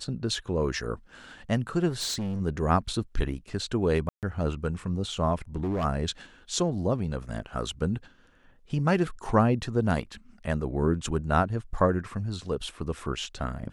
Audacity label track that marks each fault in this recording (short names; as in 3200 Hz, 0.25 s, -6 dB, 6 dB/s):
1.890000	2.410000	clipped -27.5 dBFS
4.090000	4.230000	gap 0.138 s
5.560000	5.850000	clipped -25 dBFS